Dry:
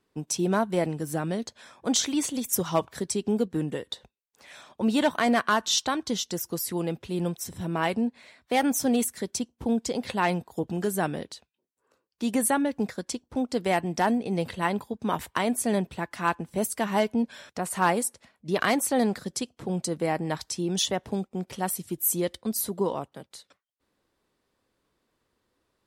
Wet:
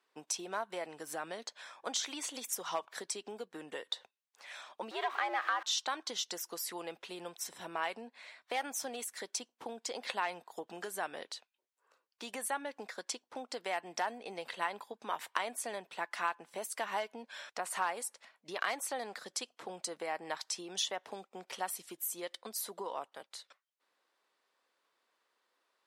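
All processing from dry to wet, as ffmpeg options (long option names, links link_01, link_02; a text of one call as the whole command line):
ffmpeg -i in.wav -filter_complex "[0:a]asettb=1/sr,asplit=3[link_01][link_02][link_03];[link_01]atrim=end=4.914[link_04];[link_02]atrim=start=4.91:end=5.63,asetpts=PTS-STARTPTS,afade=type=in:duration=0.004:curve=qsin,afade=type=out:start_time=0.716:duration=0.004:curve=qsin,aeval=exprs='val(0)+0.5*0.0355*sgn(val(0))':channel_layout=same,bass=frequency=250:gain=-9,treble=frequency=4000:gain=-14,afreqshift=110[link_05];[link_03]atrim=start=5.626[link_06];[link_04][link_05]acrossfade=duration=0.004:curve1=hsin:curve2=qsin[link_07];[link_07][link_06]acrossfade=duration=0.004:curve1=qsin:curve2=hsin,acompressor=threshold=-29dB:ratio=6,highpass=740,highshelf=frequency=8000:gain=-10,volume=1dB" out.wav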